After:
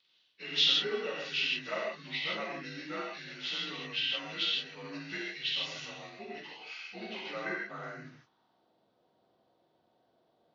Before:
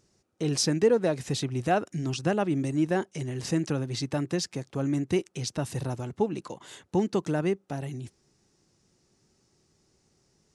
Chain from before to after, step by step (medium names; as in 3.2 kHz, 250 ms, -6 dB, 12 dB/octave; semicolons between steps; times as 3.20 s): frequency axis rescaled in octaves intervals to 87%; band-pass sweep 2.7 kHz -> 660 Hz, 7.11–8.71 s; gated-style reverb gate 190 ms flat, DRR -4.5 dB; trim +5.5 dB